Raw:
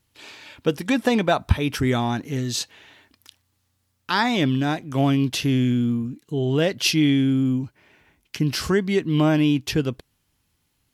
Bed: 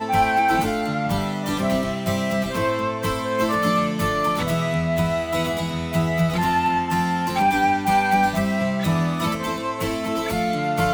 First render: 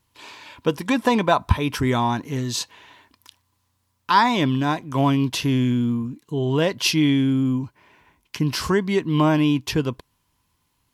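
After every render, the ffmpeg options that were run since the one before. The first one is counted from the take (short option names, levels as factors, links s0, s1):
-af "equalizer=f=1000:t=o:w=0.22:g=14.5"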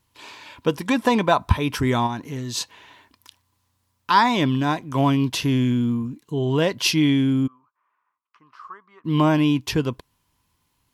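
-filter_complex "[0:a]asplit=3[s0][s1][s2];[s0]afade=t=out:st=2.06:d=0.02[s3];[s1]acompressor=threshold=0.0224:ratio=1.5:attack=3.2:release=140:knee=1:detection=peak,afade=t=in:st=2.06:d=0.02,afade=t=out:st=2.55:d=0.02[s4];[s2]afade=t=in:st=2.55:d=0.02[s5];[s3][s4][s5]amix=inputs=3:normalize=0,asplit=3[s6][s7][s8];[s6]afade=t=out:st=7.46:d=0.02[s9];[s7]bandpass=f=1200:t=q:w=15,afade=t=in:st=7.46:d=0.02,afade=t=out:st=9.04:d=0.02[s10];[s8]afade=t=in:st=9.04:d=0.02[s11];[s9][s10][s11]amix=inputs=3:normalize=0"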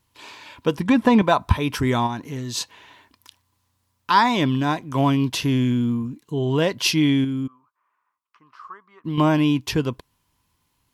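-filter_complex "[0:a]asettb=1/sr,asplit=3[s0][s1][s2];[s0]atrim=end=0.784[s3];[s1]atrim=start=0.78:end=1.22,asetpts=PTS-STARTPTS,afade=t=in:d=0.004:c=qsin,afade=t=out:st=0.436:d=0.004:c=qsin,bass=f=250:g=10,treble=f=4000:g=-8[s4];[s2]atrim=start=1.216[s5];[s3][s4]acrossfade=d=0.004:c1=hsin:c2=qsin[s6];[s6][s5]acrossfade=d=0.004:c1=qsin:c2=hsin,asettb=1/sr,asplit=3[s7][s8][s9];[s7]atrim=end=7.244[s10];[s8]atrim=start=7.24:end=9.18,asetpts=PTS-STARTPTS,afade=t=in:d=0.004:c=qsin,afade=t=out:st=1.936:d=0.004:c=qsin,acompressor=threshold=0.0794:ratio=6:attack=3.2:release=140:knee=1:detection=peak[s11];[s9]atrim=start=9.176[s12];[s10][s11]acrossfade=d=0.004:c1=hsin:c2=qsin[s13];[s13][s12]acrossfade=d=0.004:c1=qsin:c2=hsin"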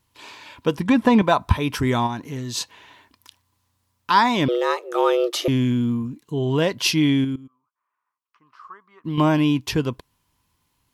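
-filter_complex "[0:a]asettb=1/sr,asplit=3[s0][s1][s2];[s0]atrim=end=4.484[s3];[s1]atrim=start=4.48:end=5.48,asetpts=PTS-STARTPTS,afade=t=in:d=0.004:c=qsin,afade=t=out:st=0.996:d=0.004:c=qsin,afreqshift=230[s4];[s2]atrim=start=5.476[s5];[s3][s4]acrossfade=d=0.004:c1=hsin:c2=qsin[s6];[s6][s5]acrossfade=d=0.004:c1=qsin:c2=hsin,asplit=2[s7][s8];[s7]atrim=end=7.36,asetpts=PTS-STARTPTS,afade=t=out:st=7.356:d=0.004:c=hsin:silence=0.125893[s9];[s8]atrim=start=7.36,asetpts=PTS-STARTPTS,afade=t=in:d=1.76:silence=0.125893[s10];[s9][s10]concat=n=2:v=0:a=1"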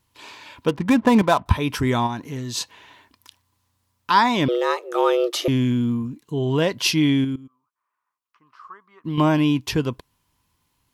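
-filter_complex "[0:a]asettb=1/sr,asplit=3[s0][s1][s2];[s0]atrim=end=0.684[s3];[s1]atrim=start=0.68:end=1.46,asetpts=PTS-STARTPTS,afade=t=in:d=0.004:c=qsin,afade=t=out:st=0.776:d=0.004:c=qsin,adynamicsmooth=sensitivity=7.5:basefreq=630[s4];[s2]atrim=start=1.456[s5];[s3][s4]acrossfade=d=0.004:c1=hsin:c2=qsin[s6];[s6][s5]acrossfade=d=0.004:c1=qsin:c2=hsin"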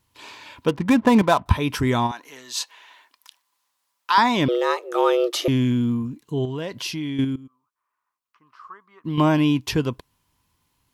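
-filter_complex "[0:a]asettb=1/sr,asplit=3[s0][s1][s2];[s0]atrim=end=2.114[s3];[s1]atrim=start=2.11:end=4.18,asetpts=PTS-STARTPTS,afade=t=in:d=0.004:c=qsin,afade=t=out:st=2.066:d=0.004:c=qsin,highpass=720[s4];[s2]atrim=start=4.176[s5];[s3][s4]acrossfade=d=0.004:c1=hsin:c2=qsin[s6];[s6][s5]acrossfade=d=0.004:c1=qsin:c2=hsin,asettb=1/sr,asplit=3[s7][s8][s9];[s7]atrim=end=6.454[s10];[s8]atrim=start=6.45:end=7.19,asetpts=PTS-STARTPTS,afade=t=in:d=0.004:c=qsin,afade=t=out:st=0.736:d=0.004:c=qsin,acompressor=threshold=0.0316:ratio=2.5:attack=3.2:release=140:knee=1:detection=peak[s11];[s9]atrim=start=7.186[s12];[s10][s11]acrossfade=d=0.004:c1=hsin:c2=qsin[s13];[s13][s12]acrossfade=d=0.004:c1=qsin:c2=hsin"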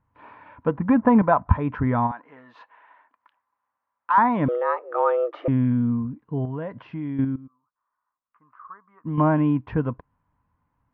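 -af "lowpass=f=1600:w=0.5412,lowpass=f=1600:w=1.3066,equalizer=f=370:w=6.7:g=-14.5"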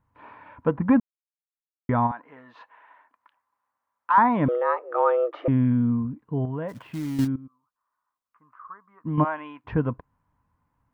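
-filter_complex "[0:a]asplit=3[s0][s1][s2];[s0]afade=t=out:st=6.68:d=0.02[s3];[s1]acrusher=bits=4:mode=log:mix=0:aa=0.000001,afade=t=in:st=6.68:d=0.02,afade=t=out:st=7.26:d=0.02[s4];[s2]afade=t=in:st=7.26:d=0.02[s5];[s3][s4][s5]amix=inputs=3:normalize=0,asplit=3[s6][s7][s8];[s6]afade=t=out:st=9.23:d=0.02[s9];[s7]highpass=1000,afade=t=in:st=9.23:d=0.02,afade=t=out:st=9.64:d=0.02[s10];[s8]afade=t=in:st=9.64:d=0.02[s11];[s9][s10][s11]amix=inputs=3:normalize=0,asplit=3[s12][s13][s14];[s12]atrim=end=1,asetpts=PTS-STARTPTS,afade=t=out:st=0.996:d=0.004:c=hsin[s15];[s13]atrim=start=1:end=1.89,asetpts=PTS-STARTPTS,volume=0[s16];[s14]atrim=start=1.89,asetpts=PTS-STARTPTS,afade=t=in:d=0.004:c=hsin[s17];[s15][s16][s17]concat=n=3:v=0:a=1"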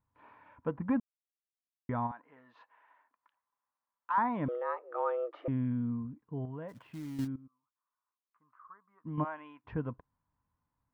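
-af "volume=0.266"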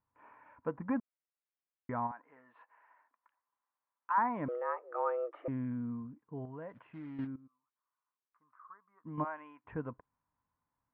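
-af "lowpass=f=2400:w=0.5412,lowpass=f=2400:w=1.3066,lowshelf=f=210:g=-9.5"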